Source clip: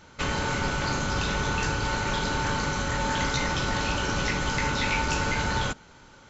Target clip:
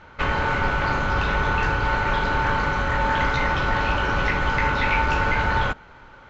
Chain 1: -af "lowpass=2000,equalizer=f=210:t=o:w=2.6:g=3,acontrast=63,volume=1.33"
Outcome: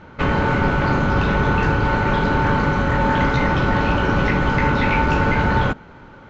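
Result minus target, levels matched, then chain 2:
250 Hz band +7.0 dB
-af "lowpass=2000,equalizer=f=210:t=o:w=2.6:g=-8.5,acontrast=63,volume=1.33"

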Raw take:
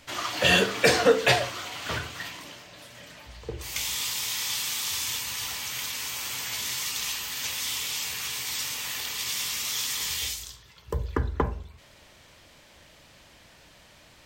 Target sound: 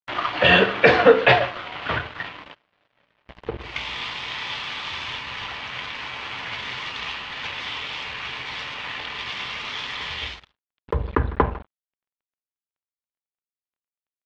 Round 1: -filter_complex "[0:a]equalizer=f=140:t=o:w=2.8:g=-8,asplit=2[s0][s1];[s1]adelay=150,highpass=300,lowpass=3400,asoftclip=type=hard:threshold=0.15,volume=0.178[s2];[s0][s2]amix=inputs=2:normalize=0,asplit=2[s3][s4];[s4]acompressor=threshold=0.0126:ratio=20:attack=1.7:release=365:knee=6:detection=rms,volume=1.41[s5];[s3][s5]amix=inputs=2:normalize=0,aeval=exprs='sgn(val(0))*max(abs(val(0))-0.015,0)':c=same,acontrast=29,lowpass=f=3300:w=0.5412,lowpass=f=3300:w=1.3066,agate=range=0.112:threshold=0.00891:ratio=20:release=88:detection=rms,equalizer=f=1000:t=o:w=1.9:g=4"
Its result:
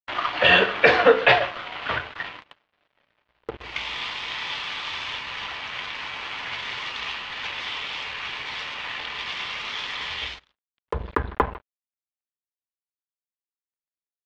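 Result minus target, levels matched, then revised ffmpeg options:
125 Hz band -6.0 dB
-filter_complex "[0:a]asplit=2[s0][s1];[s1]adelay=150,highpass=300,lowpass=3400,asoftclip=type=hard:threshold=0.15,volume=0.178[s2];[s0][s2]amix=inputs=2:normalize=0,asplit=2[s3][s4];[s4]acompressor=threshold=0.0126:ratio=20:attack=1.7:release=365:knee=6:detection=rms,volume=1.41[s5];[s3][s5]amix=inputs=2:normalize=0,aeval=exprs='sgn(val(0))*max(abs(val(0))-0.015,0)':c=same,acontrast=29,lowpass=f=3300:w=0.5412,lowpass=f=3300:w=1.3066,agate=range=0.112:threshold=0.00891:ratio=20:release=88:detection=rms,equalizer=f=1000:t=o:w=1.9:g=4"

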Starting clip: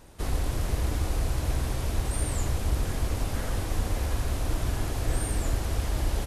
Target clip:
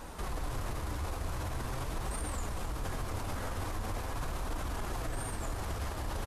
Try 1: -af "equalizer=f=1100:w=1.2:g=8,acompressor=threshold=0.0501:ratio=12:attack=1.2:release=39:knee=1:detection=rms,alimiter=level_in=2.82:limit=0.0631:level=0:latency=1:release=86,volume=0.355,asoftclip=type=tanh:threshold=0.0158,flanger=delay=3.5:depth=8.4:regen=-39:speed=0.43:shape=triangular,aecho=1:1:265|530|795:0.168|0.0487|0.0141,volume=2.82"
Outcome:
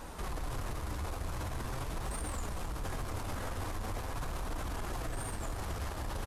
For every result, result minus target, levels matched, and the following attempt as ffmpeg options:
compression: peak gain reduction +10.5 dB; saturation: distortion +11 dB
-af "equalizer=f=1100:w=1.2:g=8,alimiter=level_in=2.82:limit=0.0631:level=0:latency=1:release=86,volume=0.355,asoftclip=type=tanh:threshold=0.0158,flanger=delay=3.5:depth=8.4:regen=-39:speed=0.43:shape=triangular,aecho=1:1:265|530|795:0.168|0.0487|0.0141,volume=2.82"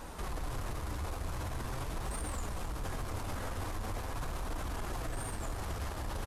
saturation: distortion +11 dB
-af "equalizer=f=1100:w=1.2:g=8,alimiter=level_in=2.82:limit=0.0631:level=0:latency=1:release=86,volume=0.355,asoftclip=type=tanh:threshold=0.0335,flanger=delay=3.5:depth=8.4:regen=-39:speed=0.43:shape=triangular,aecho=1:1:265|530|795:0.168|0.0487|0.0141,volume=2.82"

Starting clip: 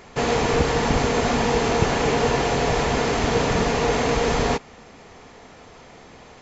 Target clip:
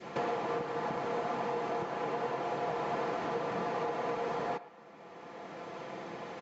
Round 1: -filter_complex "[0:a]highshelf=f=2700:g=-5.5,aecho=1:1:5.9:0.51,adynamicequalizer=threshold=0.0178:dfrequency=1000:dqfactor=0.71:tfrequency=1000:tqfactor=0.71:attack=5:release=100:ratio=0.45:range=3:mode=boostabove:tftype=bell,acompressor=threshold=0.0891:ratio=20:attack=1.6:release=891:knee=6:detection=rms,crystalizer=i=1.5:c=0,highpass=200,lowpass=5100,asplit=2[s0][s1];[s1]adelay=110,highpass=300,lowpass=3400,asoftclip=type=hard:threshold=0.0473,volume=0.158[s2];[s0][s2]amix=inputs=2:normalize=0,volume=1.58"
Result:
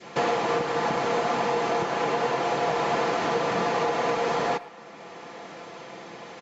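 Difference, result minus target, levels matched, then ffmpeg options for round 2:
compression: peak gain reduction -8.5 dB; 4 kHz band +4.0 dB
-filter_complex "[0:a]highshelf=f=2700:g=-15.5,aecho=1:1:5.9:0.51,adynamicequalizer=threshold=0.0178:dfrequency=1000:dqfactor=0.71:tfrequency=1000:tqfactor=0.71:attack=5:release=100:ratio=0.45:range=3:mode=boostabove:tftype=bell,acompressor=threshold=0.0299:ratio=20:attack=1.6:release=891:knee=6:detection=rms,crystalizer=i=1.5:c=0,highpass=200,lowpass=5100,asplit=2[s0][s1];[s1]adelay=110,highpass=300,lowpass=3400,asoftclip=type=hard:threshold=0.0473,volume=0.158[s2];[s0][s2]amix=inputs=2:normalize=0,volume=1.58"

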